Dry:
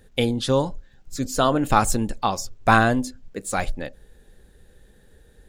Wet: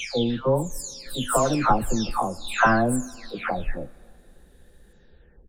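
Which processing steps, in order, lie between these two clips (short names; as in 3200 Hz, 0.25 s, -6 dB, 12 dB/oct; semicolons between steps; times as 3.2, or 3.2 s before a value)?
spectral delay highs early, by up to 0.559 s; on a send: HPF 190 Hz + reverb RT60 2.6 s, pre-delay 38 ms, DRR 23 dB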